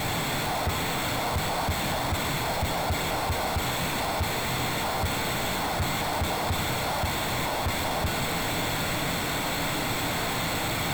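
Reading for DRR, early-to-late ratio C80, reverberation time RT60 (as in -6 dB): 3.5 dB, 10.0 dB, 0.80 s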